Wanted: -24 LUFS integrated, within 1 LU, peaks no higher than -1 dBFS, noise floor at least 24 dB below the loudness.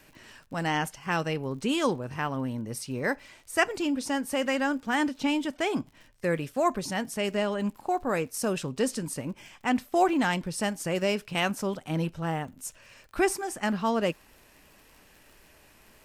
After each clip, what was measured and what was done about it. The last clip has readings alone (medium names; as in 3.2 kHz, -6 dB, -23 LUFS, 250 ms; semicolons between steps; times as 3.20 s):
tick rate 56 per s; loudness -29.0 LUFS; peak level -10.0 dBFS; loudness target -24.0 LUFS
-> de-click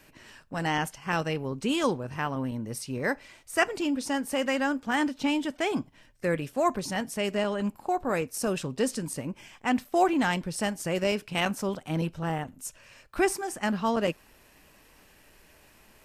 tick rate 0.062 per s; loudness -29.0 LUFS; peak level -10.5 dBFS; loudness target -24.0 LUFS
-> trim +5 dB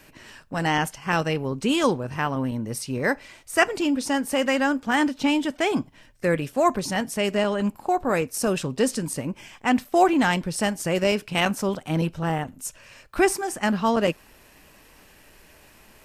loudness -24.0 LUFS; peak level -5.5 dBFS; noise floor -53 dBFS